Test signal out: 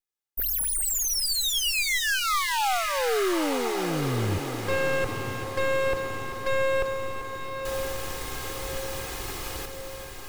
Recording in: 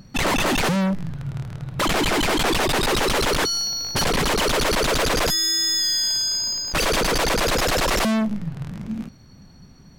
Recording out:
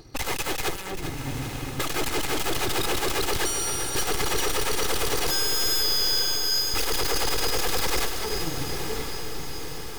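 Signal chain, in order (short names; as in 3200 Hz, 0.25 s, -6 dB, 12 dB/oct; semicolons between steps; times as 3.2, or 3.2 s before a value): minimum comb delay 2.4 ms; wavefolder -22 dBFS; on a send: diffused feedback echo 1.029 s, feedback 58%, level -8.5 dB; on the sum: lo-fi delay 0.391 s, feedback 55%, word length 8-bit, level -9 dB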